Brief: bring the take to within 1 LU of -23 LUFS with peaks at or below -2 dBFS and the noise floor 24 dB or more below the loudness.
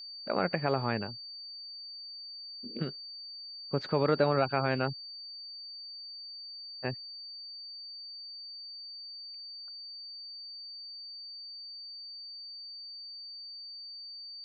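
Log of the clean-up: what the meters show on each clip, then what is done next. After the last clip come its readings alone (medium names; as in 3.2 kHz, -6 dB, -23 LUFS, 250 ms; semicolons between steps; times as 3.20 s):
steady tone 4.6 kHz; tone level -42 dBFS; loudness -36.5 LUFS; peak level -13.0 dBFS; loudness target -23.0 LUFS
-> band-stop 4.6 kHz, Q 30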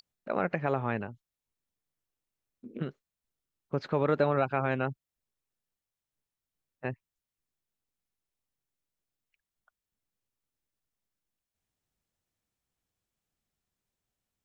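steady tone not found; loudness -31.5 LUFS; peak level -13.5 dBFS; loudness target -23.0 LUFS
-> trim +8.5 dB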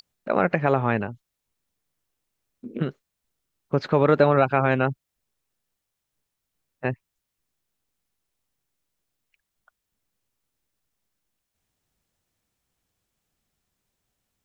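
loudness -23.0 LUFS; peak level -5.0 dBFS; noise floor -82 dBFS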